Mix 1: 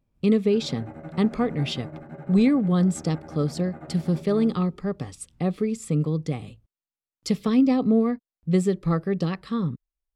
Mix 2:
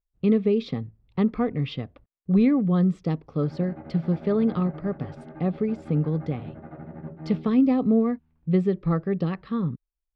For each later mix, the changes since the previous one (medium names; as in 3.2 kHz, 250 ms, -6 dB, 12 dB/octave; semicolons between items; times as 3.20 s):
background: entry +2.90 s; master: add distance through air 310 m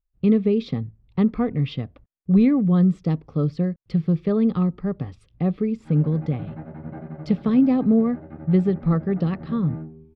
background: entry +2.45 s; master: add tone controls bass +5 dB, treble +1 dB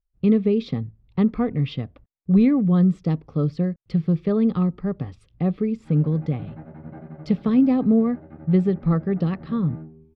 background -3.5 dB